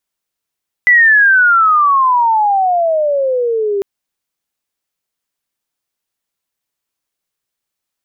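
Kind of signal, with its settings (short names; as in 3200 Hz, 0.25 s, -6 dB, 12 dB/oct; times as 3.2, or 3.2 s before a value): chirp logarithmic 2000 Hz -> 390 Hz -4.5 dBFS -> -13 dBFS 2.95 s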